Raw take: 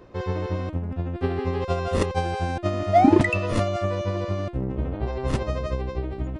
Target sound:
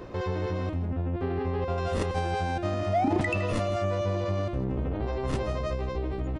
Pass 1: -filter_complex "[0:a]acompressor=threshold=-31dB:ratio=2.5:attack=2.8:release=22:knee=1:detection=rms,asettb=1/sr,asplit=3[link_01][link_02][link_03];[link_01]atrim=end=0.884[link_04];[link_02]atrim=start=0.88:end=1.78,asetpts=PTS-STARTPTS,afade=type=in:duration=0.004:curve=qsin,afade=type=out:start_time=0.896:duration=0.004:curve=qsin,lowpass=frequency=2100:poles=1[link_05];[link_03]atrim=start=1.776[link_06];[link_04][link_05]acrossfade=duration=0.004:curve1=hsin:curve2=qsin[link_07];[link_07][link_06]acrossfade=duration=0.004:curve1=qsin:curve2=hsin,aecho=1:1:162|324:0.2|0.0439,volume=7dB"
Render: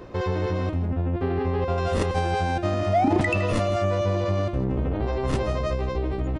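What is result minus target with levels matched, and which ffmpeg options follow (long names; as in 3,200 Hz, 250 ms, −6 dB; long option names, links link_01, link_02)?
downward compressor: peak gain reduction −4.5 dB
-filter_complex "[0:a]acompressor=threshold=-38.5dB:ratio=2.5:attack=2.8:release=22:knee=1:detection=rms,asettb=1/sr,asplit=3[link_01][link_02][link_03];[link_01]atrim=end=0.884[link_04];[link_02]atrim=start=0.88:end=1.78,asetpts=PTS-STARTPTS,afade=type=in:duration=0.004:curve=qsin,afade=type=out:start_time=0.896:duration=0.004:curve=qsin,lowpass=frequency=2100:poles=1[link_05];[link_03]atrim=start=1.776[link_06];[link_04][link_05]acrossfade=duration=0.004:curve1=hsin:curve2=qsin[link_07];[link_07][link_06]acrossfade=duration=0.004:curve1=qsin:curve2=hsin,aecho=1:1:162|324:0.2|0.0439,volume=7dB"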